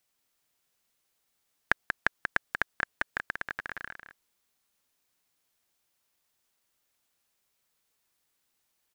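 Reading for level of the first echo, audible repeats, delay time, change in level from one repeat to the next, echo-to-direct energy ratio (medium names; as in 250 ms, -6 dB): -6.5 dB, 1, 186 ms, no regular repeats, -6.5 dB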